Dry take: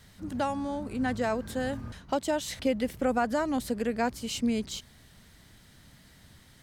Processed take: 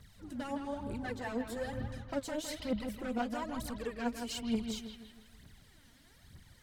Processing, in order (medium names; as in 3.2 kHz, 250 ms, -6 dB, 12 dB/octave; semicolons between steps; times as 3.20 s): saturation -25 dBFS, distortion -13 dB; phaser 1.1 Hz, delay 4.4 ms, feedback 74%; bucket-brigade echo 160 ms, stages 4096, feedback 45%, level -7 dB; trim -9 dB